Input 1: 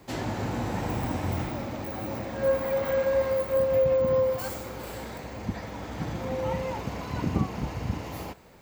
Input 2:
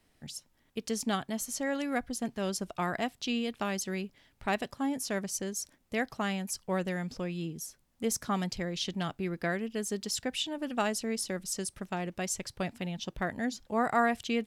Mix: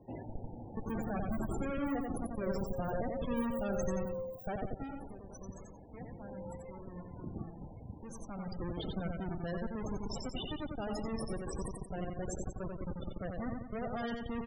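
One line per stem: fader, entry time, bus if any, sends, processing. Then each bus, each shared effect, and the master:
−4.5 dB, 0.00 s, no send, no echo send, parametric band 1,300 Hz −8 dB 0.62 octaves; automatic ducking −12 dB, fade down 0.25 s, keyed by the second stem
0:04.70 −1.5 dB → 0:05.01 −14 dB → 0:07.86 −14 dB → 0:08.65 −3.5 dB, 0.00 s, no send, echo send −3.5 dB, comparator with hysteresis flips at −32 dBFS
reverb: not used
echo: repeating echo 89 ms, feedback 48%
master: high-shelf EQ 9,000 Hz +6.5 dB; spectral peaks only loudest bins 32

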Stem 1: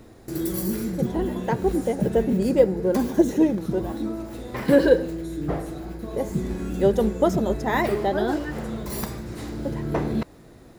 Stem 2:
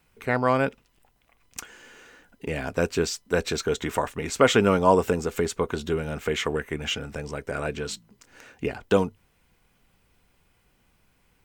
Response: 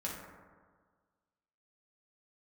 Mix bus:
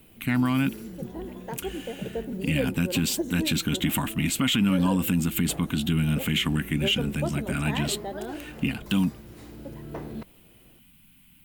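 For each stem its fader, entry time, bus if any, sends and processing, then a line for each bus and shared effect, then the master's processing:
−11.5 dB, 0.00 s, no send, no processing
+3.0 dB, 0.00 s, no send, drawn EQ curve 100 Hz 0 dB, 160 Hz +8 dB, 280 Hz +7 dB, 450 Hz −23 dB, 770 Hz −9 dB, 1,800 Hz −3 dB, 3,000 Hz +9 dB, 5,700 Hz −6 dB, 11,000 Hz +13 dB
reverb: not used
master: brickwall limiter −15 dBFS, peak gain reduction 10.5 dB

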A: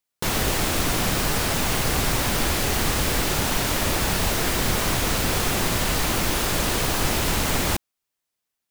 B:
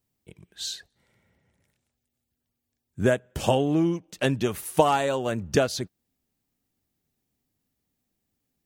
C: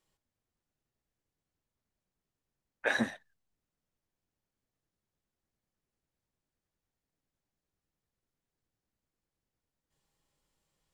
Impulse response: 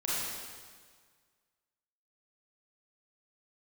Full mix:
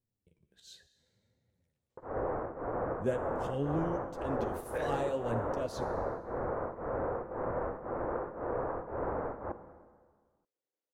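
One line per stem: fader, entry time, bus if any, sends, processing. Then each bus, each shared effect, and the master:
−1.0 dB, 1.75 s, bus A, send −17.5 dB, Bessel low-pass filter 730 Hz, order 8; spectral tilt +3.5 dB per octave; tremolo along a rectified sine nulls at 1.9 Hz
−14.0 dB, 0.00 s, no bus, send −19 dB, low-shelf EQ 390 Hz +11 dB; volume swells 128 ms; flanger 0.74 Hz, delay 7.6 ms, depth 9.5 ms, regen +32%
−5.0 dB, 1.90 s, bus A, no send, Chebyshev band-pass filter 360–7,200 Hz; tilt shelving filter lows +4 dB, about 690 Hz
bus A: 0.0 dB, parametric band 190 Hz −12 dB 0.59 octaves; brickwall limiter −29.5 dBFS, peak gain reduction 8 dB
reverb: on, RT60 1.7 s, pre-delay 28 ms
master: parametric band 510 Hz +8 dB 0.43 octaves

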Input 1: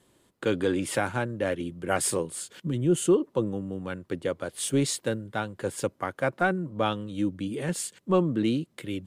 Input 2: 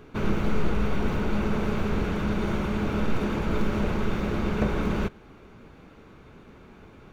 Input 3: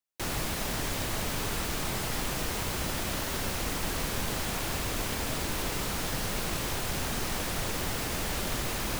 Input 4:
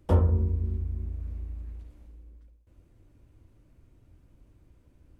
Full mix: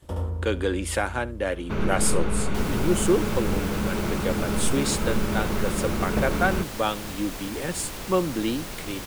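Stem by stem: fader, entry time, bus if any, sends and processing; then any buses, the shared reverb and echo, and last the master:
+2.5 dB, 0.00 s, no send, echo send −21 dB, low-shelf EQ 210 Hz −10.5 dB
0.0 dB, 1.55 s, no send, no echo send, no processing
−4.0 dB, 2.35 s, no send, no echo send, no processing
−3.5 dB, 0.00 s, no send, echo send −8.5 dB, compressor on every frequency bin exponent 0.6; noise gate with hold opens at −35 dBFS; high-shelf EQ 2,800 Hz +10.5 dB; automatic ducking −14 dB, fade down 0.25 s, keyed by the first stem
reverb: not used
echo: single-tap delay 71 ms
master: no processing

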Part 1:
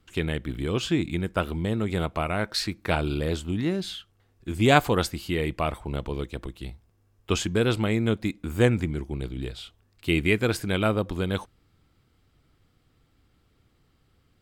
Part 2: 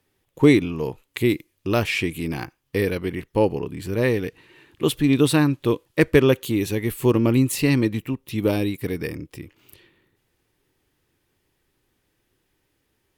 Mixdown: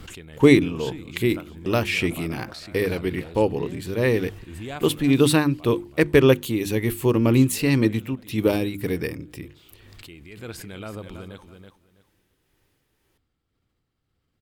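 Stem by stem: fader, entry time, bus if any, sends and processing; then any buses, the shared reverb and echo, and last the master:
0:04.55 −13 dB → 0:04.90 −20.5 dB → 0:10.30 −20.5 dB → 0:10.50 −11 dB, 0.00 s, no send, echo send −9.5 dB, background raised ahead of every attack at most 30 dB per second
+2.0 dB, 0.00 s, no send, no echo send, mains-hum notches 50/100/150/200/250/300/350 Hz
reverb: not used
echo: repeating echo 327 ms, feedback 21%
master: amplitude tremolo 1.9 Hz, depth 32%

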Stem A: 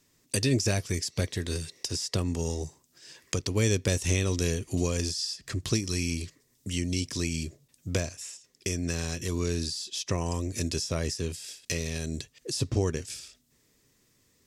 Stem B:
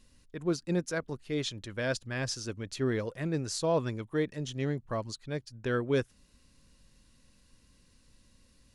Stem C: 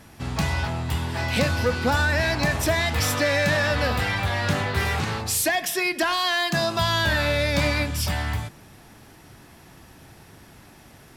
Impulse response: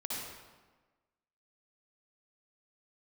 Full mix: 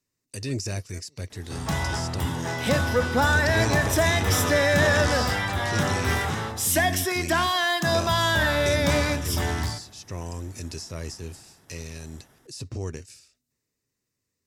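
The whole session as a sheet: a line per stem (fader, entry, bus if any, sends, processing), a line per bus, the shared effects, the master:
+0.5 dB, 0.00 s, no send, parametric band 92 Hz +6 dB 0.87 octaves; notch filter 3,300 Hz, Q 7.1; brickwall limiter −16 dBFS, peak gain reduction 8.5 dB
−14.0 dB, 0.00 s, no send, phaser with staggered stages 2.6 Hz
+2.0 dB, 1.30 s, send −18.5 dB, parametric band 2,500 Hz −8.5 dB 0.33 octaves; notch filter 4,400 Hz, Q 5.4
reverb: on, RT60 1.3 s, pre-delay 53 ms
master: low-shelf EQ 130 Hz −4 dB; transient designer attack −3 dB, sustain +3 dB; expander for the loud parts 1.5 to 1, over −48 dBFS

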